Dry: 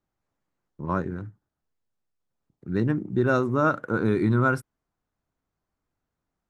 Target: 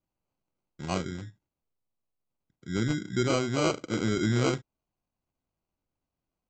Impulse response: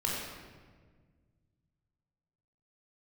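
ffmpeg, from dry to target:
-af "bandreject=frequency=440:width=12,aresample=16000,acrusher=samples=9:mix=1:aa=0.000001,aresample=44100,volume=-4dB"

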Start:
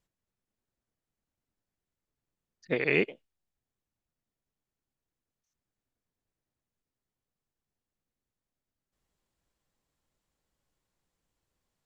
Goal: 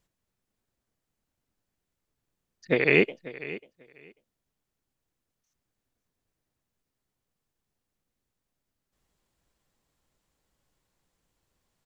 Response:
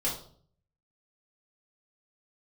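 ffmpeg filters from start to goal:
-af "aecho=1:1:542|1084:0.15|0.0239,volume=5.5dB"

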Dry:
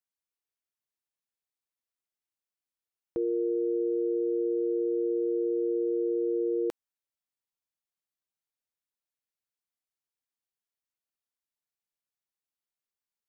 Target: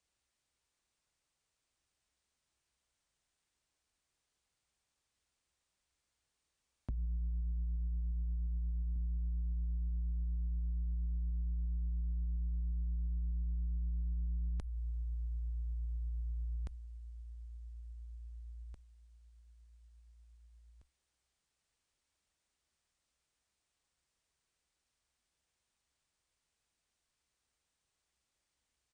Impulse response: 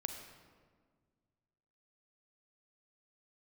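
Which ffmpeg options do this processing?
-filter_complex "[0:a]equalizer=frequency=200:width_type=o:width=0.21:gain=14.5,afreqshift=-340,alimiter=level_in=5.5dB:limit=-24dB:level=0:latency=1:release=126,volume=-5.5dB,highpass=frequency=41:width=0.5412,highpass=frequency=41:width=1.3066,lowshelf=frequency=110:gain=10,asplit=2[link_01][link_02];[link_02]aecho=0:1:951|1902|2853:0.237|0.0664|0.0186[link_03];[link_01][link_03]amix=inputs=2:normalize=0,asetrate=20242,aresample=44100,acompressor=threshold=-39dB:ratio=5,asoftclip=type=tanh:threshold=-39dB,volume=7dB"

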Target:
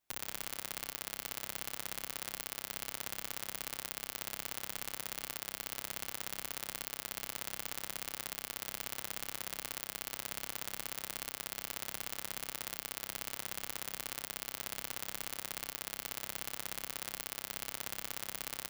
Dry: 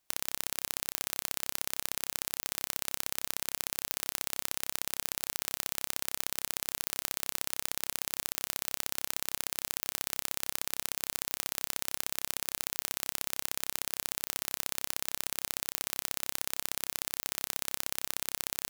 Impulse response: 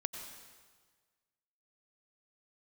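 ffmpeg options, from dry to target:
-filter_complex "[0:a]asplit=2[link_01][link_02];[1:a]atrim=start_sample=2205,lowpass=4000[link_03];[link_02][link_03]afir=irnorm=-1:irlink=0,volume=-5dB[link_04];[link_01][link_04]amix=inputs=2:normalize=0,asplit=2[link_05][link_06];[link_06]adelay=7.9,afreqshift=-2.5[link_07];[link_05][link_07]amix=inputs=2:normalize=1,volume=-3.5dB"

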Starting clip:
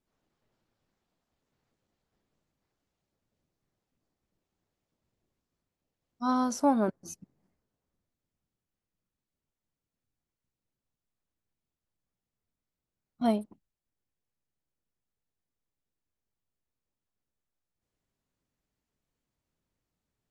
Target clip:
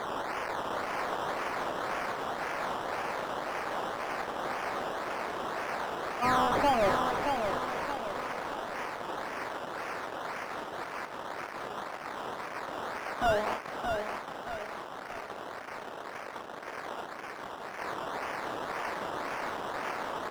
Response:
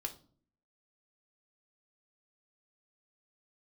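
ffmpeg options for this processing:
-filter_complex "[0:a]aeval=exprs='val(0)+0.5*0.0299*sgn(val(0))':channel_layout=same,lowpass=frequency=5600:width=0.5412,lowpass=frequency=5600:width=1.3066,agate=range=-9dB:threshold=-36dB:ratio=16:detection=peak,highpass=630,acrusher=samples=16:mix=1:aa=0.000001:lfo=1:lforange=9.6:lforate=1.9,asplit=2[link_01][link_02];[link_02]highpass=frequency=720:poles=1,volume=29dB,asoftclip=type=tanh:threshold=-18dB[link_03];[link_01][link_03]amix=inputs=2:normalize=0,lowpass=frequency=1400:poles=1,volume=-6dB,aecho=1:1:623|1246|1869|2492|3115:0.531|0.228|0.0982|0.0422|0.0181"

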